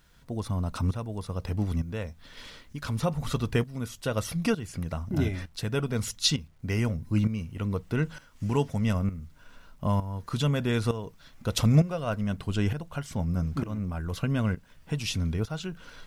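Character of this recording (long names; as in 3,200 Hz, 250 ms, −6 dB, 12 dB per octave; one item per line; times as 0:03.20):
tremolo saw up 1.1 Hz, depth 75%
a quantiser's noise floor 12 bits, dither none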